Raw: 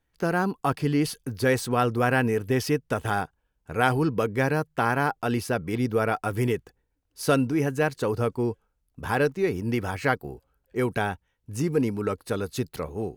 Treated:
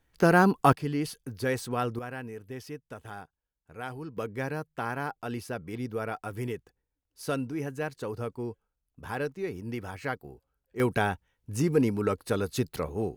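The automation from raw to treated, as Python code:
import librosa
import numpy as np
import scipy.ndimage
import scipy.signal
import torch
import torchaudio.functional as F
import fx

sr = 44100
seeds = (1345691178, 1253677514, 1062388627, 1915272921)

y = fx.gain(x, sr, db=fx.steps((0.0, 4.5), (0.73, -6.5), (1.99, -16.0), (4.17, -9.0), (10.8, 0.0)))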